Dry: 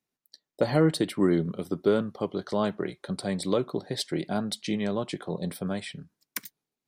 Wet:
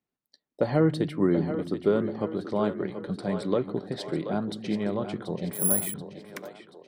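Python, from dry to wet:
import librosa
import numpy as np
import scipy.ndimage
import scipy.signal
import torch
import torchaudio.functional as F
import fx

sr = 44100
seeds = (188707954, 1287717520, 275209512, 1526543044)

y = fx.lowpass(x, sr, hz=1800.0, slope=6)
y = fx.echo_split(y, sr, split_hz=310.0, low_ms=175, high_ms=732, feedback_pct=52, wet_db=-9.0)
y = fx.resample_bad(y, sr, factor=4, down='filtered', up='zero_stuff', at=(5.53, 5.94))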